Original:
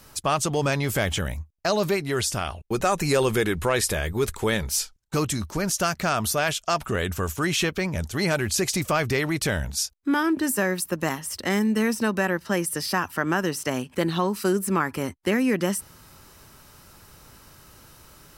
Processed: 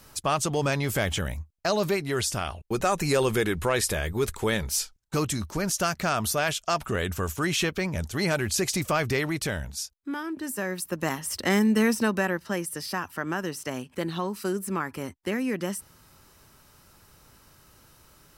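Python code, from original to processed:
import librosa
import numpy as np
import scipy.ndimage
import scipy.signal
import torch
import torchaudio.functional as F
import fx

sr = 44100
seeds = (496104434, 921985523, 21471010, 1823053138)

y = fx.gain(x, sr, db=fx.line((9.18, -2.0), (10.26, -11.0), (11.35, 1.0), (11.89, 1.0), (12.68, -6.0)))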